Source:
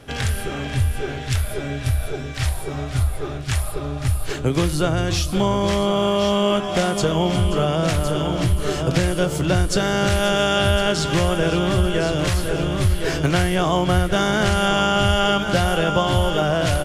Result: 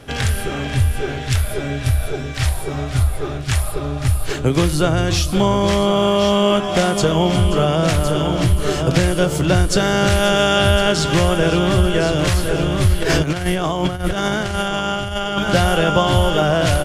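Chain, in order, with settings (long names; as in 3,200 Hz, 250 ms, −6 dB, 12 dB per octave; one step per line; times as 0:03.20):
0:13.02–0:15.39: compressor whose output falls as the input rises −22 dBFS, ratio −0.5
level +3.5 dB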